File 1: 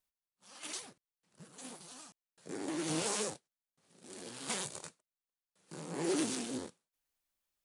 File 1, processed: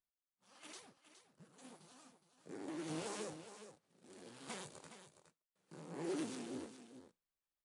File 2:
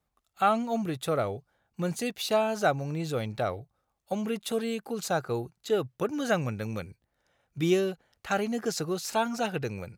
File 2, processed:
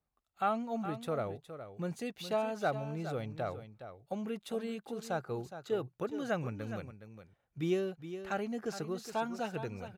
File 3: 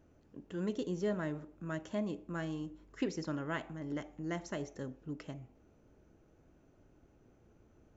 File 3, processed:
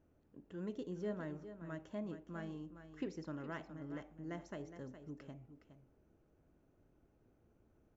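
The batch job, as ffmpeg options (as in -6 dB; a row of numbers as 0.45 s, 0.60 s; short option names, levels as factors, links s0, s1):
-filter_complex "[0:a]highshelf=f=3500:g=-8.5,asplit=2[s0][s1];[s1]aecho=0:1:415:0.282[s2];[s0][s2]amix=inputs=2:normalize=0,volume=0.447"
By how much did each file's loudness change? -9.0 LU, -7.5 LU, -7.0 LU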